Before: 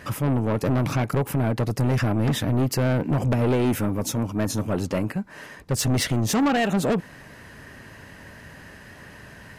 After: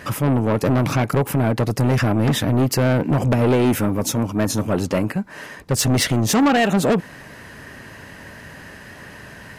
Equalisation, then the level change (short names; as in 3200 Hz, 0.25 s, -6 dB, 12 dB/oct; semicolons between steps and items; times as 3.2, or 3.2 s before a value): low shelf 110 Hz -4.5 dB; +5.5 dB